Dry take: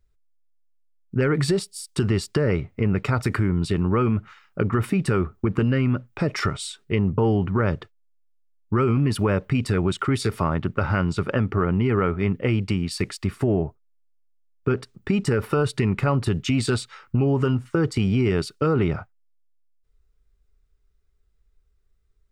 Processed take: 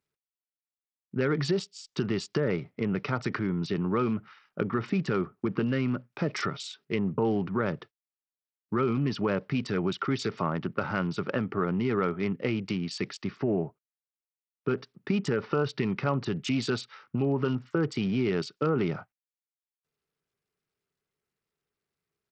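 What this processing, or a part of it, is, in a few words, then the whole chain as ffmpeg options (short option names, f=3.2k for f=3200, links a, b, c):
Bluetooth headset: -af "highpass=f=140:w=0.5412,highpass=f=140:w=1.3066,aresample=16000,aresample=44100,volume=-5dB" -ar 44100 -c:a sbc -b:a 64k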